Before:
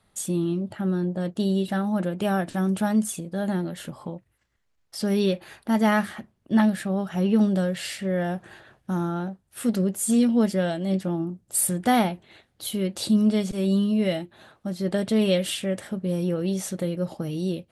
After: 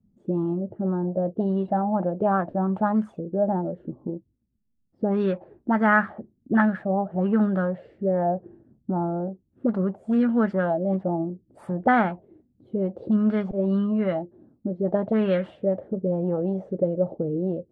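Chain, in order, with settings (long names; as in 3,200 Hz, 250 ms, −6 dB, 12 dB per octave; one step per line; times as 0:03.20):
envelope-controlled low-pass 220–1,500 Hz up, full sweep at −18 dBFS
level −1.5 dB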